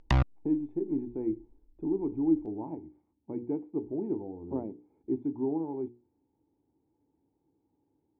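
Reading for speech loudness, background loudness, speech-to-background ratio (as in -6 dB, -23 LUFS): -33.5 LUFS, -30.5 LUFS, -3.0 dB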